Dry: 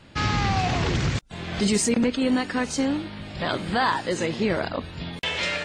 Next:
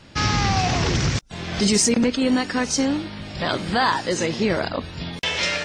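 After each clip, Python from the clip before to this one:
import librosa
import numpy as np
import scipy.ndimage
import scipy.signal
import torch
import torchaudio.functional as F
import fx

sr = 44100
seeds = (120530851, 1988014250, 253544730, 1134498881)

y = fx.peak_eq(x, sr, hz=5600.0, db=9.0, octaves=0.47)
y = y * librosa.db_to_amplitude(2.5)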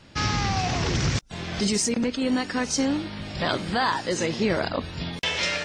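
y = fx.rider(x, sr, range_db=3, speed_s=0.5)
y = y * librosa.db_to_amplitude(-3.5)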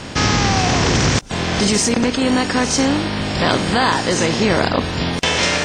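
y = fx.bin_compress(x, sr, power=0.6)
y = y * librosa.db_to_amplitude(5.0)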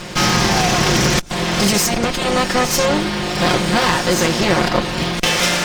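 y = fx.lower_of_two(x, sr, delay_ms=5.6)
y = y * librosa.db_to_amplitude(2.5)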